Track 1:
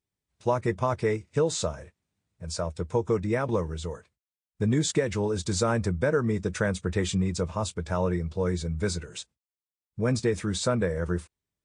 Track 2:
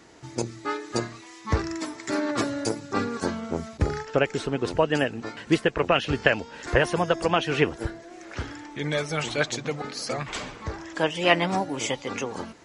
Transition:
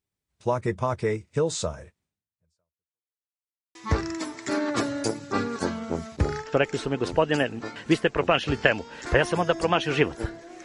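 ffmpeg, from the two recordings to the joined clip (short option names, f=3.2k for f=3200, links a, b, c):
-filter_complex "[0:a]apad=whole_dur=10.64,atrim=end=10.64,asplit=2[a][b];[a]atrim=end=3.18,asetpts=PTS-STARTPTS,afade=t=out:st=2.04:d=1.14:c=exp[c];[b]atrim=start=3.18:end=3.75,asetpts=PTS-STARTPTS,volume=0[d];[1:a]atrim=start=1.36:end=8.25,asetpts=PTS-STARTPTS,afade=t=in:d=0.004:c=hsin[e];[c][d][e]concat=n=3:v=0:a=1"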